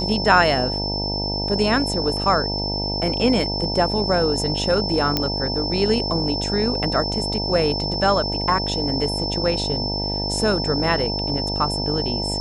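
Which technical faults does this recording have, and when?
buzz 50 Hz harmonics 19 -27 dBFS
tone 5300 Hz -25 dBFS
5.17 pop -5 dBFS

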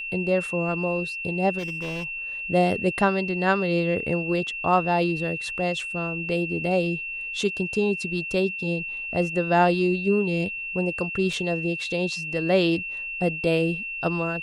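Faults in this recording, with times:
tone 2700 Hz -30 dBFS
1.58–2.05 clipped -27 dBFS
11.33 gap 2.3 ms

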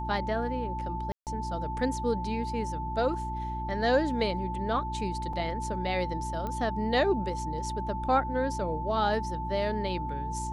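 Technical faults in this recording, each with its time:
hum 60 Hz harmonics 6 -36 dBFS
tone 880 Hz -34 dBFS
1.12–1.27 gap 0.148 s
5.33 gap 3.5 ms
6.47 pop -22 dBFS

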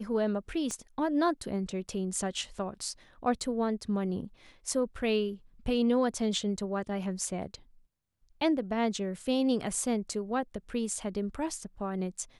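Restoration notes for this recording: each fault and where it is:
0.71 pop -23 dBFS

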